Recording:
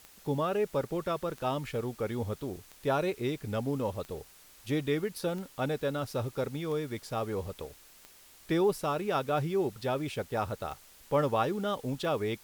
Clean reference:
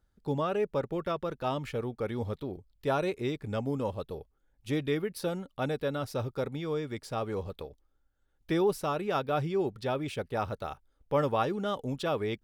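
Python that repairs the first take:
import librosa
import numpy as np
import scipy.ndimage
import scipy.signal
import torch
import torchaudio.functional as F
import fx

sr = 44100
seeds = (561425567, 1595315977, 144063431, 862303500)

y = fx.fix_declick_ar(x, sr, threshold=10.0)
y = fx.noise_reduce(y, sr, print_start_s=7.9, print_end_s=8.4, reduce_db=13.0)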